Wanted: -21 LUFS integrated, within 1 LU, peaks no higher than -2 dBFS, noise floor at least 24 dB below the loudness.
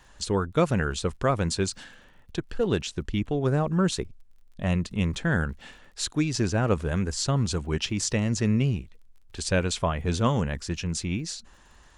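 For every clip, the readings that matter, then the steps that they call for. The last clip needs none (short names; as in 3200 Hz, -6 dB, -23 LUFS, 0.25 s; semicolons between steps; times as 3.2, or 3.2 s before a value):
ticks 33/s; loudness -27.0 LUFS; peak -9.5 dBFS; loudness target -21.0 LUFS
-> de-click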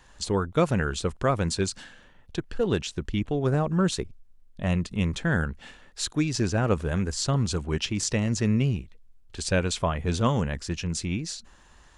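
ticks 0.084/s; loudness -27.0 LUFS; peak -9.5 dBFS; loudness target -21.0 LUFS
-> gain +6 dB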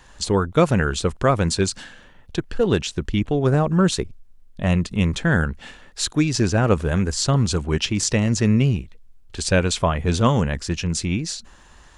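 loudness -21.0 LUFS; peak -3.5 dBFS; noise floor -49 dBFS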